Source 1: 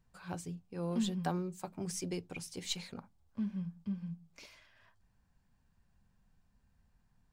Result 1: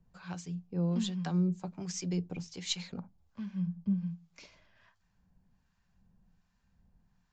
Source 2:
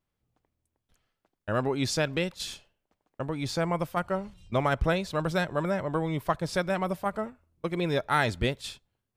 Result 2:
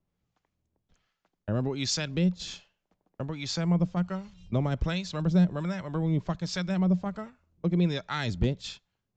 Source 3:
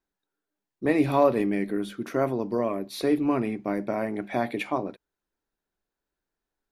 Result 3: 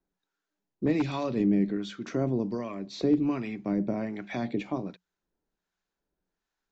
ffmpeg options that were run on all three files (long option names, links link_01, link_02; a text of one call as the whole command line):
ffmpeg -i in.wav -filter_complex "[0:a]equalizer=frequency=180:width=7.2:gain=9,acrossover=split=320|3000[link_01][link_02][link_03];[link_02]acompressor=threshold=-43dB:ratio=2[link_04];[link_01][link_04][link_03]amix=inputs=3:normalize=0,aeval=exprs='0.133*(abs(mod(val(0)/0.133+3,4)-2)-1)':channel_layout=same,acrossover=split=840[link_05][link_06];[link_05]aeval=exprs='val(0)*(1-0.7/2+0.7/2*cos(2*PI*1.3*n/s))':channel_layout=same[link_07];[link_06]aeval=exprs='val(0)*(1-0.7/2-0.7/2*cos(2*PI*1.3*n/s))':channel_layout=same[link_08];[link_07][link_08]amix=inputs=2:normalize=0,aresample=16000,aresample=44100,volume=4dB" out.wav